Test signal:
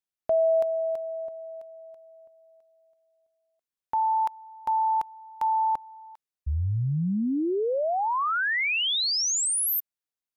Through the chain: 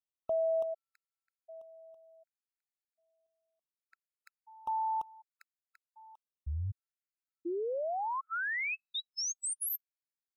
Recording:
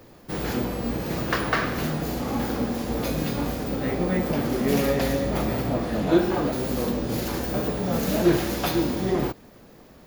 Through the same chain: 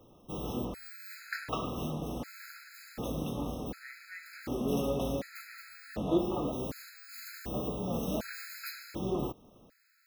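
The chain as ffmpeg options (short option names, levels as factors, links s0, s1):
-af "afftfilt=real='re*gt(sin(2*PI*0.67*pts/sr)*(1-2*mod(floor(b*sr/1024/1300),2)),0)':imag='im*gt(sin(2*PI*0.67*pts/sr)*(1-2*mod(floor(b*sr/1024/1300),2)),0)':win_size=1024:overlap=0.75,volume=0.376"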